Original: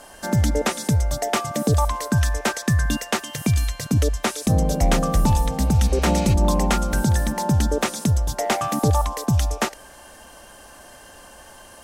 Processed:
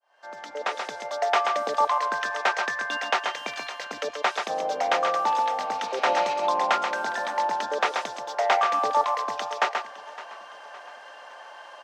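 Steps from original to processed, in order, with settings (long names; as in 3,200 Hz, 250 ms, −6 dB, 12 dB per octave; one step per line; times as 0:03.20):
fade in at the beginning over 1.11 s
four-pole ladder high-pass 530 Hz, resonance 20%
high-frequency loss of the air 210 metres
on a send: single-tap delay 132 ms −5.5 dB
on the sum: feedback echo with a swinging delay time 562 ms, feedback 47%, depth 61 cents, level −17.5 dB
level +7.5 dB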